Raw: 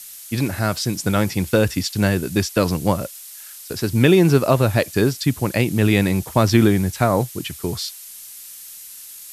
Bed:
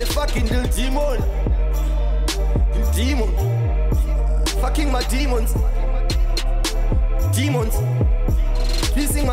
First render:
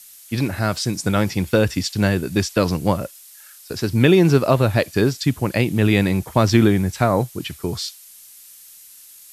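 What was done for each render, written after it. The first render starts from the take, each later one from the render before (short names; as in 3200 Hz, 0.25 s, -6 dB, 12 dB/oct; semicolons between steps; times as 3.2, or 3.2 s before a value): noise print and reduce 6 dB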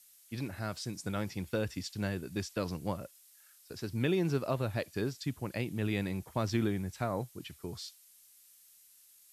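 gain -16.5 dB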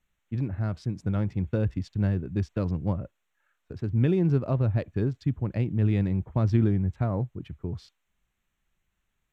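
Wiener smoothing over 9 samples; RIAA curve playback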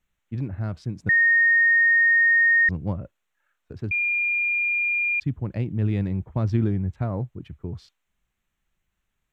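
1.09–2.69 bleep 1850 Hz -14.5 dBFS; 3.91–5.2 bleep 2410 Hz -20.5 dBFS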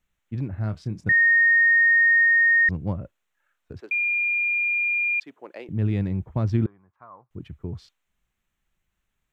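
0.57–2.25 doubler 28 ms -12 dB; 3.8–5.69 HPF 410 Hz 24 dB/oct; 6.66–7.31 band-pass 1100 Hz, Q 6.5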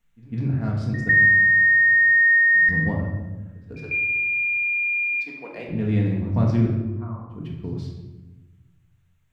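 pre-echo 0.151 s -20.5 dB; shoebox room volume 620 m³, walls mixed, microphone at 1.7 m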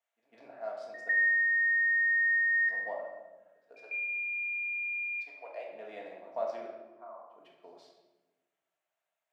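ladder high-pass 600 Hz, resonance 75%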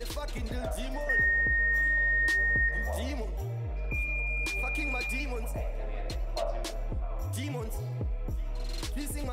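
add bed -15.5 dB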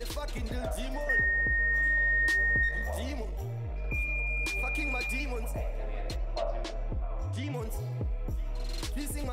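1.19–1.82 high shelf 3400 Hz -> 6300 Hz -10 dB; 2.63–3.85 half-wave gain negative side -3 dB; 6.16–7.54 air absorption 95 m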